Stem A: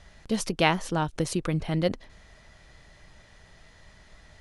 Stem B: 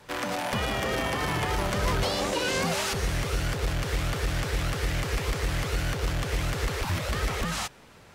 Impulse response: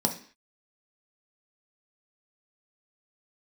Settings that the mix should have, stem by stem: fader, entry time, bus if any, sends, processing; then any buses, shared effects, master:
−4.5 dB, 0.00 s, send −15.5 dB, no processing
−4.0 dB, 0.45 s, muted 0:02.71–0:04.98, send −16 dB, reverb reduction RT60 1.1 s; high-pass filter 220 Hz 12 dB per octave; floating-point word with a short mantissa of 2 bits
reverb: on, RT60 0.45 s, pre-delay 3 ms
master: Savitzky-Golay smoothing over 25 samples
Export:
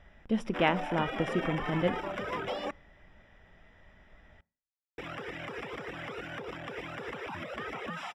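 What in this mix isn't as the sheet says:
stem B: send −16 dB → −22.5 dB
reverb return −8.5 dB

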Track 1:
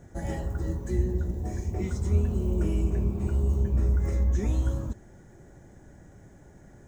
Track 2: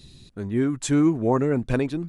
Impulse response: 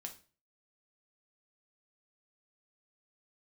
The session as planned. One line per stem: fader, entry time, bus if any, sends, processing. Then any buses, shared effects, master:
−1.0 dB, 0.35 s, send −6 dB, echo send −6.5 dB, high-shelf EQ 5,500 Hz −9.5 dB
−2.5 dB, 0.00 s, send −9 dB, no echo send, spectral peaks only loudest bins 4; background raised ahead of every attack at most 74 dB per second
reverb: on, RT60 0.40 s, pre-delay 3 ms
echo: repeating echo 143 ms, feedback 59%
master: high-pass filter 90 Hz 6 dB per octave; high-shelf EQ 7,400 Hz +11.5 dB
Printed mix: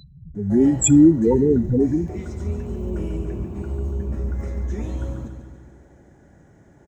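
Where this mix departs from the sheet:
stem 2 −2.5 dB → +6.5 dB
master: missing high-shelf EQ 7,400 Hz +11.5 dB

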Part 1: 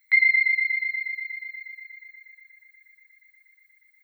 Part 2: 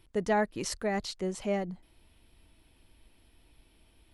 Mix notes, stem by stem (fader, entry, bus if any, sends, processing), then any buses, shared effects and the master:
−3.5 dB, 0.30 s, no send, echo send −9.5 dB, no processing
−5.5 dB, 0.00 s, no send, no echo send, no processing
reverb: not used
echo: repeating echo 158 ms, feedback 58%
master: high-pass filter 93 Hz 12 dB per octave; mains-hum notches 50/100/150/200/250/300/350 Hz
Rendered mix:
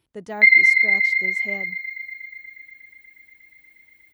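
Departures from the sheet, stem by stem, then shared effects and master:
stem 1 −3.5 dB → +6.0 dB
master: missing mains-hum notches 50/100/150/200/250/300/350 Hz

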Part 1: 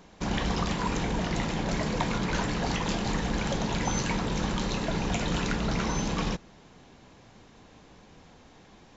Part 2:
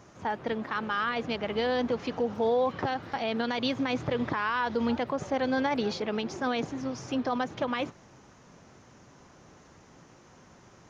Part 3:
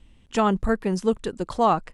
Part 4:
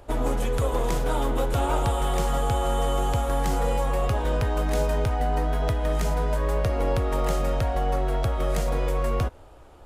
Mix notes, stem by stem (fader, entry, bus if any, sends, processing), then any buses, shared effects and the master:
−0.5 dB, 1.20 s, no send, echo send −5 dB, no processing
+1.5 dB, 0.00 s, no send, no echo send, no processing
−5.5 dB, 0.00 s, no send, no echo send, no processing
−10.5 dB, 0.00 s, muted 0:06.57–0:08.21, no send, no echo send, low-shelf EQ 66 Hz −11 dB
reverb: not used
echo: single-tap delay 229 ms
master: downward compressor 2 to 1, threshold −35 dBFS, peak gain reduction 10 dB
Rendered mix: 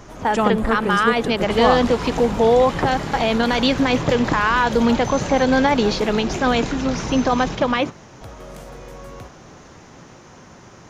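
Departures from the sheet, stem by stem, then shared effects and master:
stem 2 +1.5 dB → +11.0 dB
stem 3 −5.5 dB → +1.5 dB
master: missing downward compressor 2 to 1, threshold −35 dBFS, peak gain reduction 10 dB

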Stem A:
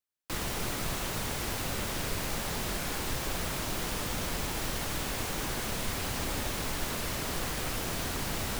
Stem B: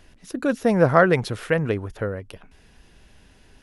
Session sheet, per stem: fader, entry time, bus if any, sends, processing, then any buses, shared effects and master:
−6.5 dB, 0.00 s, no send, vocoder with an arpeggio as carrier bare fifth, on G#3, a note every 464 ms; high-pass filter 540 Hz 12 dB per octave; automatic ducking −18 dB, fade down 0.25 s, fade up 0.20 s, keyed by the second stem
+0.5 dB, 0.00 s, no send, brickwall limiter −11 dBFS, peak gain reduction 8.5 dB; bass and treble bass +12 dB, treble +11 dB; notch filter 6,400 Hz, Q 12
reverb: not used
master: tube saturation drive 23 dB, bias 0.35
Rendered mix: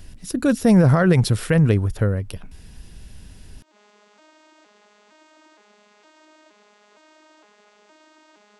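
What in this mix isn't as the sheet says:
stem A −6.5 dB → −12.5 dB
master: missing tube saturation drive 23 dB, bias 0.35

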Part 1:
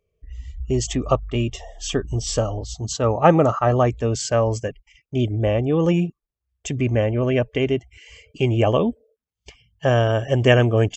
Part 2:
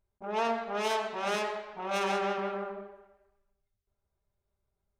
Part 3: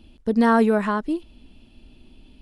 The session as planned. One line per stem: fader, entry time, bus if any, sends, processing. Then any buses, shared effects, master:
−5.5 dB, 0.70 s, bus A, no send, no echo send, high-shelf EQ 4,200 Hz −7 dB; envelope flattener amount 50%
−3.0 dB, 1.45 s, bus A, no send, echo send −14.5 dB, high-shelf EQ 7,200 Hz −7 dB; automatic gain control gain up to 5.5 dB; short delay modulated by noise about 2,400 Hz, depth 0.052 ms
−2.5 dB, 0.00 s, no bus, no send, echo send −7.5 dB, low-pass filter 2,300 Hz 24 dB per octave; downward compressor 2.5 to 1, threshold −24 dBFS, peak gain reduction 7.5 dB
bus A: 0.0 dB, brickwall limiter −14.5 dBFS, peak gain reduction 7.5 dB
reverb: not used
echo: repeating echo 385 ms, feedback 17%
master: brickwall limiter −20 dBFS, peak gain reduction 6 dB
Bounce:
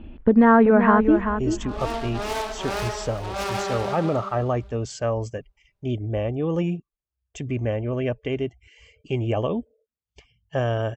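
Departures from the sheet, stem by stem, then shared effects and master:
stem 1: missing envelope flattener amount 50%
stem 3 −2.5 dB → +9.5 dB
master: missing brickwall limiter −20 dBFS, peak gain reduction 6 dB

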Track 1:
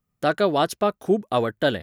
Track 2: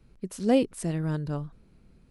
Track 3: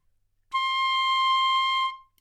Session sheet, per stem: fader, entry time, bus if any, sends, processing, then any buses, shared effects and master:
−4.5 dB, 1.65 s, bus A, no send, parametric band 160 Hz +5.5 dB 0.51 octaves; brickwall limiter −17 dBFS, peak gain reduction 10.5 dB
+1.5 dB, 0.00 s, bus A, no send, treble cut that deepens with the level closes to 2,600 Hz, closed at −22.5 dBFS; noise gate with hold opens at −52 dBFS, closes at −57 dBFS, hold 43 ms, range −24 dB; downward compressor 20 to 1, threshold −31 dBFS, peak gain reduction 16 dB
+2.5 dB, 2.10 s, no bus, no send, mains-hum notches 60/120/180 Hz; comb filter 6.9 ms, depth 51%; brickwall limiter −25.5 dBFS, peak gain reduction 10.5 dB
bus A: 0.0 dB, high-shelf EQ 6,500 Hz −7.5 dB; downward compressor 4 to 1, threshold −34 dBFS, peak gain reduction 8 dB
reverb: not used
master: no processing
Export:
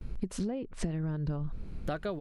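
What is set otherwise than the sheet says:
stem 1: missing brickwall limiter −17 dBFS, peak gain reduction 10.5 dB
stem 2 +1.5 dB → +10.5 dB
master: extra low-shelf EQ 82 Hz +12 dB

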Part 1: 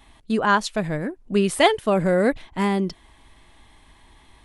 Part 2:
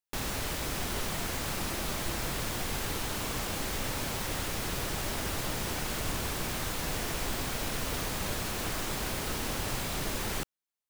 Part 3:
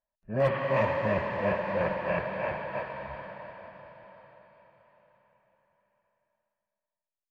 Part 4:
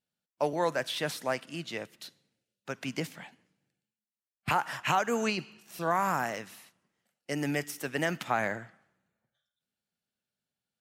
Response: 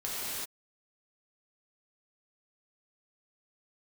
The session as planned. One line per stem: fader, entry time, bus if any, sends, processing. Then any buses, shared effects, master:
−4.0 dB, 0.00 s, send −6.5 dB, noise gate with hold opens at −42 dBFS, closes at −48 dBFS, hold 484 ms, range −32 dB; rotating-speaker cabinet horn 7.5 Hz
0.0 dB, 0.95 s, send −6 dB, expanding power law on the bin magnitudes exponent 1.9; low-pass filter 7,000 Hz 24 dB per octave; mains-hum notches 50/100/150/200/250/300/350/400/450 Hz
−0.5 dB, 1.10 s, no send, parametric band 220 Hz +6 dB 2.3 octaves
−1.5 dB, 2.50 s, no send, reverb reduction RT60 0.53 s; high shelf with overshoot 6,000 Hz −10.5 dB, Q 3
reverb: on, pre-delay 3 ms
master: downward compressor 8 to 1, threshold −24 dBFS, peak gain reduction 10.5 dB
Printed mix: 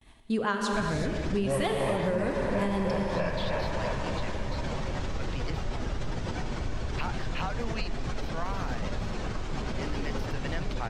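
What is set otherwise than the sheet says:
stem 2: entry 0.95 s → 0.60 s
stem 4 −1.5 dB → −8.0 dB

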